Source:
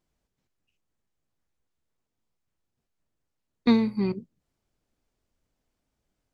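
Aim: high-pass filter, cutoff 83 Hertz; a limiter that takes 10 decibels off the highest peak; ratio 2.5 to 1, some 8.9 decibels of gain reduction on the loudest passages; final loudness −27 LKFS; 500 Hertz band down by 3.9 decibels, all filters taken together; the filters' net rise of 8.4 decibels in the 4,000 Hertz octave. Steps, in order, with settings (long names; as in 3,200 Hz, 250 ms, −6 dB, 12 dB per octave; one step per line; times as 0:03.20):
high-pass filter 83 Hz
parametric band 500 Hz −5 dB
parametric band 4,000 Hz +9 dB
downward compressor 2.5 to 1, threshold −29 dBFS
level +8 dB
brickwall limiter −16 dBFS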